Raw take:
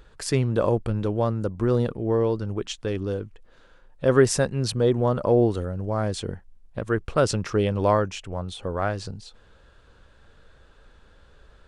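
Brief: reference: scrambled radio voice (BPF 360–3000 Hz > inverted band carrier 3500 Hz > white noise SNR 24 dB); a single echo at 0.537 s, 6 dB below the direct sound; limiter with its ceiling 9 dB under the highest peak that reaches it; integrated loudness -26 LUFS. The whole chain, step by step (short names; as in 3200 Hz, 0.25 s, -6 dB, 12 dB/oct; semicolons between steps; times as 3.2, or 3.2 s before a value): limiter -14 dBFS; BPF 360–3000 Hz; echo 0.537 s -6 dB; inverted band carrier 3500 Hz; white noise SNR 24 dB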